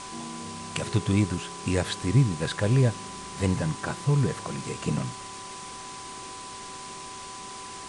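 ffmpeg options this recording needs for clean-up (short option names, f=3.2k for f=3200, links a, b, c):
-af "bandreject=f=384.6:t=h:w=4,bandreject=f=769.2:t=h:w=4,bandreject=f=1.1538k:t=h:w=4,bandreject=f=1k:w=30,afwtdn=0.01"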